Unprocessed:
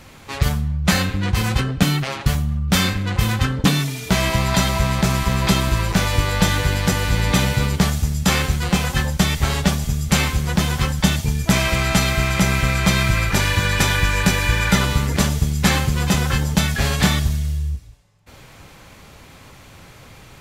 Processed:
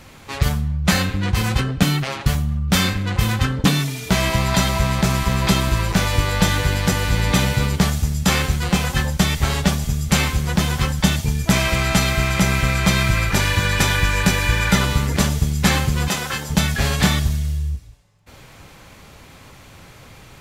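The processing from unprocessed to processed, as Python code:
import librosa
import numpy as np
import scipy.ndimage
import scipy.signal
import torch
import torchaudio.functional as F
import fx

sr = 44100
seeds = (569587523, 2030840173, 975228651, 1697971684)

y = fx.highpass(x, sr, hz=480.0, slope=6, at=(16.08, 16.5))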